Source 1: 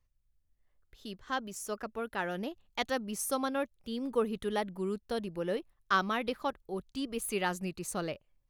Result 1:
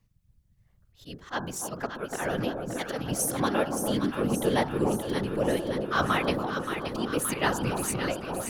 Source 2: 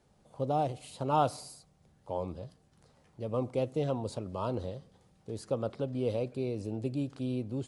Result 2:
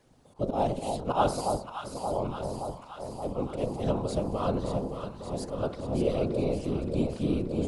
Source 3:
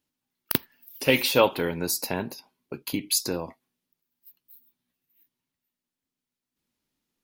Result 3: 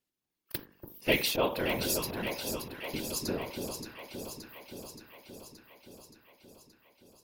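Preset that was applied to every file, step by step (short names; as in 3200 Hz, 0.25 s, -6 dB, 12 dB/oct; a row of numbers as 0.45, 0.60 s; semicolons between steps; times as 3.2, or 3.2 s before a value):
auto swell 0.103 s; de-hum 49.55 Hz, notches 35; whisperiser; on a send: echo with dull and thin repeats by turns 0.287 s, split 1000 Hz, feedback 81%, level -5 dB; on the sum: normalise peaks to -12 dBFS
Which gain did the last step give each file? +7.5, +5.0, -4.5 dB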